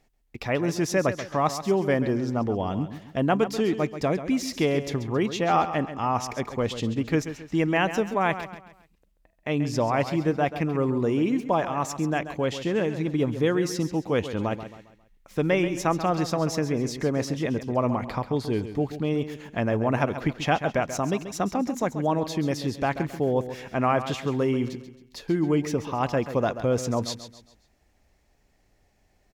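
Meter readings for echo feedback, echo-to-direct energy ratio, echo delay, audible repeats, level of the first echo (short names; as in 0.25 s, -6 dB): 39%, -11.0 dB, 0.135 s, 3, -11.5 dB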